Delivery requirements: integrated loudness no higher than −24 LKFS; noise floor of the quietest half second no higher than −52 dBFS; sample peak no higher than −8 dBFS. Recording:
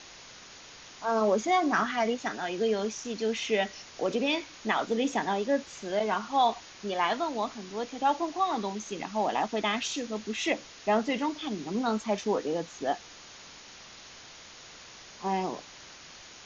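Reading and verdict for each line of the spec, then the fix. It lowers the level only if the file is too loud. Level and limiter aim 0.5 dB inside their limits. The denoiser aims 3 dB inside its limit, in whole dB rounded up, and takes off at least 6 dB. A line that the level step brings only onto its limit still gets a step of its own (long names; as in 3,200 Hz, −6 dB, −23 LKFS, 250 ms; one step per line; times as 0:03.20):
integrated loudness −30.0 LKFS: in spec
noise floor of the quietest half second −49 dBFS: out of spec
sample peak −13.0 dBFS: in spec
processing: broadband denoise 6 dB, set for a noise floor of −49 dBFS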